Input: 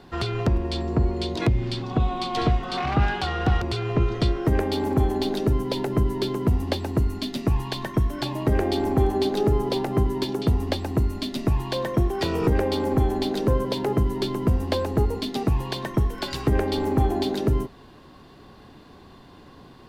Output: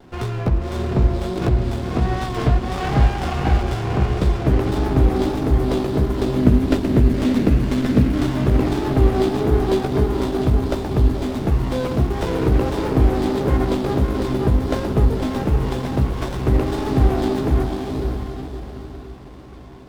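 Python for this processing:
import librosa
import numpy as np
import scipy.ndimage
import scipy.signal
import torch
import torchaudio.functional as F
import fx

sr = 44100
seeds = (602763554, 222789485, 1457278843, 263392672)

p1 = fx.graphic_eq_10(x, sr, hz=(250, 1000, 2000), db=(10, -9, 11), at=(6.36, 8.3))
p2 = fx.vibrato(p1, sr, rate_hz=1.5, depth_cents=43.0)
p3 = fx.doubler(p2, sr, ms=16.0, db=-5.5)
p4 = p3 + fx.echo_diffused(p3, sr, ms=547, feedback_pct=43, wet_db=-3.5, dry=0)
p5 = fx.running_max(p4, sr, window=17)
y = F.gain(torch.from_numpy(p5), 1.5).numpy()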